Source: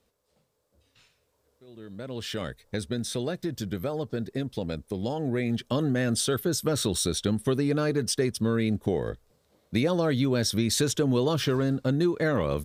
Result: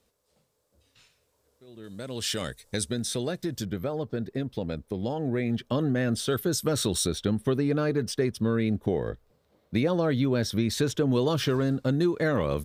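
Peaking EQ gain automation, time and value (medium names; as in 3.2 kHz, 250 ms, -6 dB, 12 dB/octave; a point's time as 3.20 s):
peaking EQ 8.7 kHz 1.9 oct
+3.5 dB
from 1.84 s +12.5 dB
from 2.92 s +3.5 dB
from 3.65 s -8 dB
from 6.28 s +0.5 dB
from 7.07 s -8.5 dB
from 11.12 s -0.5 dB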